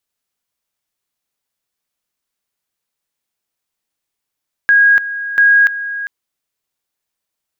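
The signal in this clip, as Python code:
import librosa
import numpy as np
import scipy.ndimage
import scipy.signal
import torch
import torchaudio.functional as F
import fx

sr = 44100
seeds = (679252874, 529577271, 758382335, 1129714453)

y = fx.two_level_tone(sr, hz=1640.0, level_db=-6.0, drop_db=13.5, high_s=0.29, low_s=0.4, rounds=2)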